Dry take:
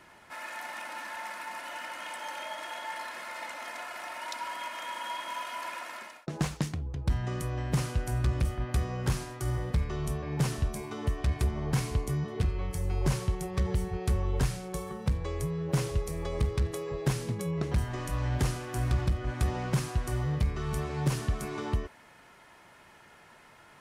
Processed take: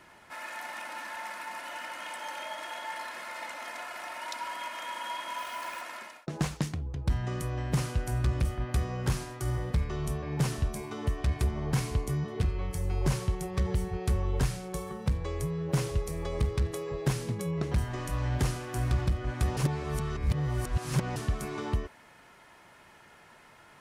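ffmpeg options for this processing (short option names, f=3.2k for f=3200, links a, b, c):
-filter_complex "[0:a]asettb=1/sr,asplit=3[a][b][c];[a]atrim=end=5.384[d];[b]atrim=start=5.38:end=5.82,asetpts=PTS-STARTPTS,afade=t=in:d=0.004:c=qsin,afade=t=out:st=0.436:d=0.004:c=qsin,acrusher=bits=9:dc=4:mix=0:aa=0.000001[e];[c]atrim=start=5.816[f];[d][e]acrossfade=d=0.004:c1=hsin:c2=qsin[g];[g][f]acrossfade=d=0.004:c1=qsin:c2=hsin,asplit=3[h][i][j];[h]atrim=end=19.572[k];[i]atrim=start=19.568:end=21.162,asetpts=PTS-STARTPTS,areverse[l];[j]atrim=start=21.158[m];[k][l]acrossfade=d=0.004:c1=hsin:c2=hsin[n];[n][m]acrossfade=d=0.004:c1=hsin:c2=hsin"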